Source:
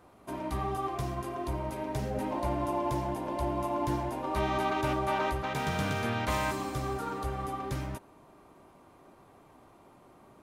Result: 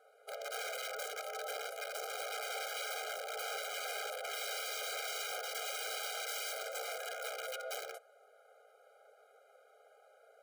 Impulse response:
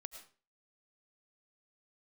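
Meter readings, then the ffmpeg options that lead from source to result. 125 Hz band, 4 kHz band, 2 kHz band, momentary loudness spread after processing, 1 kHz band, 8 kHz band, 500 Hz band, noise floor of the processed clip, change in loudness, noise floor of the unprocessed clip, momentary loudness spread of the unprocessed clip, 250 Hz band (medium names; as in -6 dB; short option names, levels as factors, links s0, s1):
under -40 dB, +3.0 dB, -2.5 dB, 4 LU, -11.5 dB, +5.0 dB, -8.5 dB, -65 dBFS, -7.0 dB, -58 dBFS, 6 LU, under -40 dB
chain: -af "aeval=exprs='(mod(28.2*val(0)+1,2)-1)/28.2':c=same,aeval=exprs='val(0)*sin(2*PI*260*n/s)':c=same,afftfilt=real='re*eq(mod(floor(b*sr/1024/410),2),1)':imag='im*eq(mod(floor(b*sr/1024/410),2),1)':win_size=1024:overlap=0.75"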